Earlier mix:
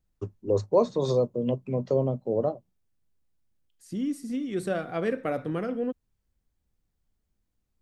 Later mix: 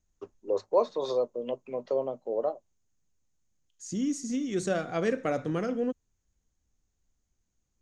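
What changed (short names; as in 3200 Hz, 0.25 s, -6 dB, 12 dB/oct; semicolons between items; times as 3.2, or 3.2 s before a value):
first voice: add BPF 500–4700 Hz; second voice: add synth low-pass 6600 Hz, resonance Q 9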